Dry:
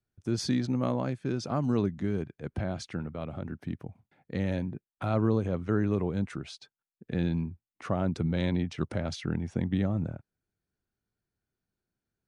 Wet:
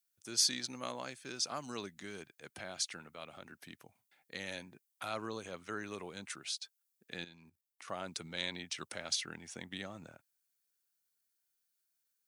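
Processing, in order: 7.24–7.88 s: level held to a coarse grid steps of 13 dB; differentiator; trim +10.5 dB

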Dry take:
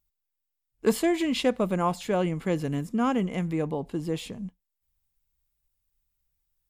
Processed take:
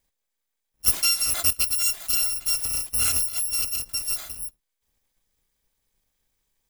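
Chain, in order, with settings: bit-reversed sample order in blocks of 256 samples; trim +2 dB

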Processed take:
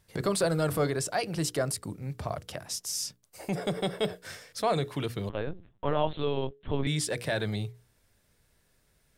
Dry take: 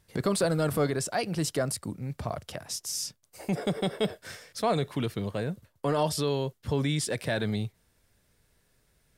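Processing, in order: hum notches 60/120/180/240/300/360/420/480 Hz; dynamic bell 230 Hz, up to -6 dB, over -48 dBFS, Q 3.6; 5.29–6.87 s: LPC vocoder at 8 kHz pitch kept

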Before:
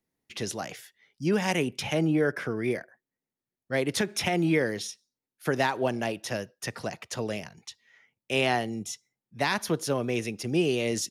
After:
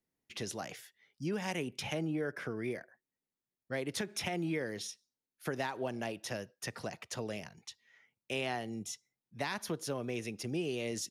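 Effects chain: compression 2:1, threshold -31 dBFS, peak gain reduction 6.5 dB; trim -5 dB

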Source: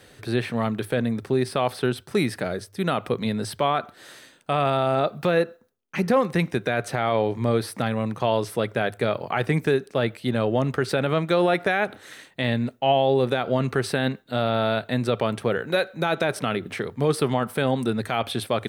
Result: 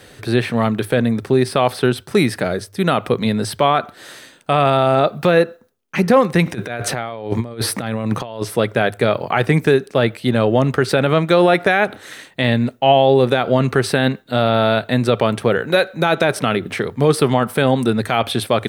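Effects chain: 6.46–8.43 s: compressor with a negative ratio -29 dBFS, ratio -0.5; trim +7.5 dB

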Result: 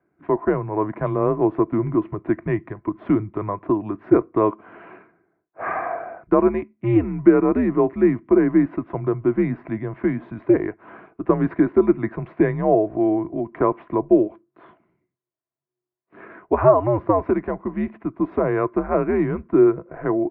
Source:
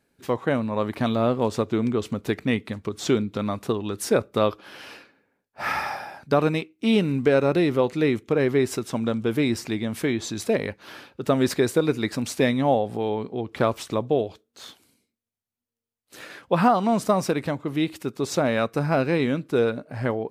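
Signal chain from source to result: mistuned SSB -100 Hz 190–2200 Hz; small resonant body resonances 350/660/1000 Hz, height 12 dB, ringing for 35 ms; trim -2.5 dB

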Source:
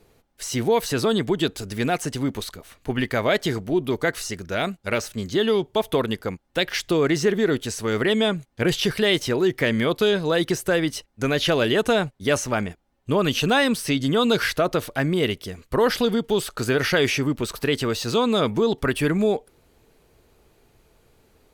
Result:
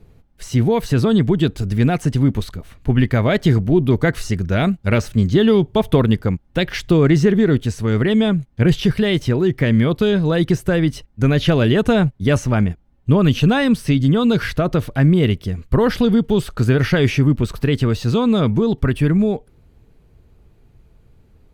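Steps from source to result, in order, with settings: tone controls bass +15 dB, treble -6 dB; gain riding 2 s

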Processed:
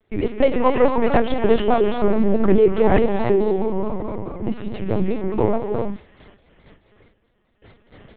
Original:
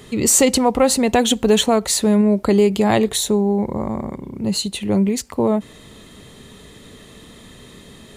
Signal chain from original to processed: dead-time distortion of 0.094 ms; high-pass 66 Hz 24 dB/octave; gate with hold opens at -31 dBFS; three-band isolator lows -18 dB, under 180 Hz, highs -23 dB, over 3 kHz; gated-style reverb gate 380 ms rising, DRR 3 dB; LPC vocoder at 8 kHz pitch kept; vibrato with a chosen wave square 4.7 Hz, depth 100 cents

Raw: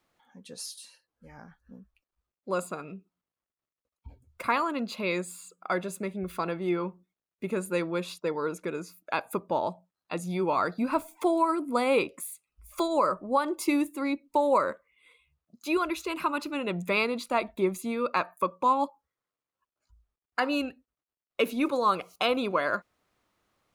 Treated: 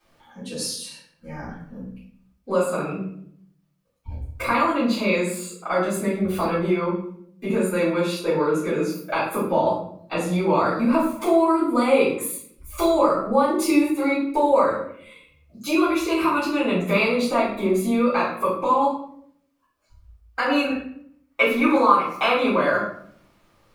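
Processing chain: 20.45–22.48 s: high-order bell 1.4 kHz +8.5 dB; compression 2:1, threshold -36 dBFS, peak gain reduction 13.5 dB; simulated room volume 110 m³, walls mixed, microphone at 3.7 m

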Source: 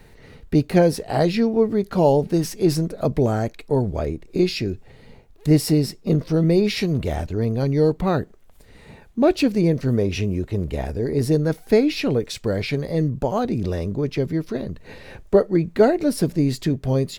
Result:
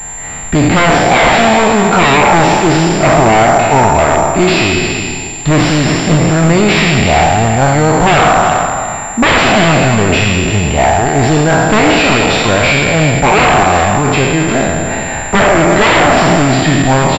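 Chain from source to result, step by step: spectral sustain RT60 1.77 s; resonant low shelf 600 Hz -7.5 dB, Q 3; sine folder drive 15 dB, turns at -4.5 dBFS; delay 358 ms -9.5 dB; class-D stage that switches slowly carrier 7.3 kHz

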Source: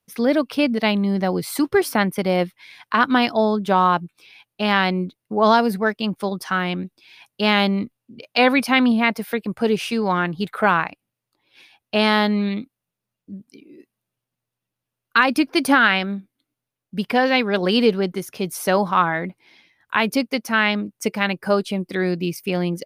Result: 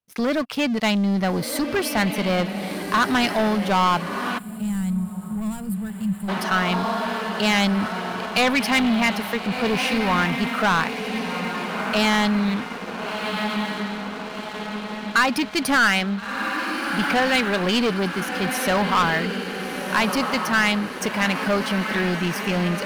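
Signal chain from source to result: treble shelf 6.3 kHz -5.5 dB; echo that smears into a reverb 1383 ms, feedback 53%, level -9 dB; waveshaping leveller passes 3; time-frequency box 4.38–6.29 s, 220–7000 Hz -22 dB; dynamic bell 370 Hz, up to -7 dB, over -24 dBFS, Q 0.82; trim -7 dB

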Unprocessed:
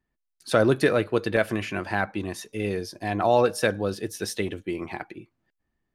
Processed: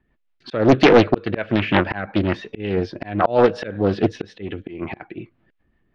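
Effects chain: low-pass 3.3 kHz 24 dB/octave; slow attack 368 ms; rotary cabinet horn 5.5 Hz; loudness maximiser +14.5 dB; loudspeaker Doppler distortion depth 0.77 ms

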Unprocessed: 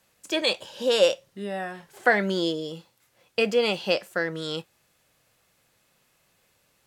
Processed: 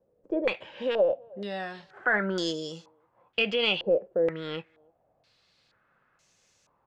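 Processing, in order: tracing distortion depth 0.039 ms; speakerphone echo 310 ms, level -29 dB; peak limiter -16.5 dBFS, peak gain reduction 10 dB; step-sequenced low-pass 2.1 Hz 490–6300 Hz; trim -3.5 dB

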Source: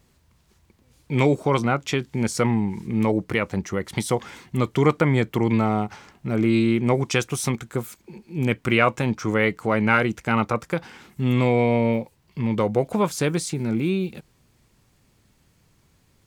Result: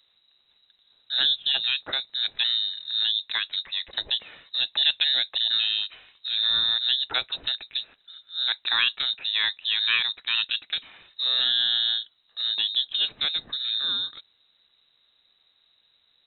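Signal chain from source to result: frequency inversion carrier 3.9 kHz; trim -4.5 dB

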